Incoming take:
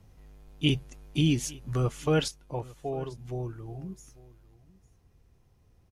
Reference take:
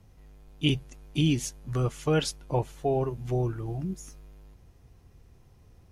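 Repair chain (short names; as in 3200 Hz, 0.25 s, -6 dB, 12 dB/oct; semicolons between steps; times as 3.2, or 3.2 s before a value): inverse comb 0.85 s -21.5 dB; gain correction +7 dB, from 2.28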